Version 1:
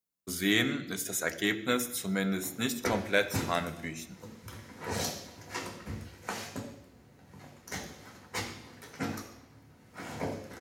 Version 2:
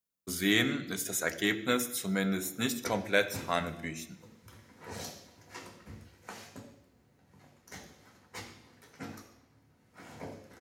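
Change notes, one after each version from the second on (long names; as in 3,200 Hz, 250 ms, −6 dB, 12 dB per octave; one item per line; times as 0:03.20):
background −8.5 dB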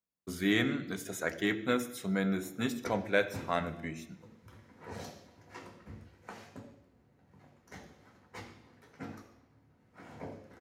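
master: add high-shelf EQ 3,400 Hz −12 dB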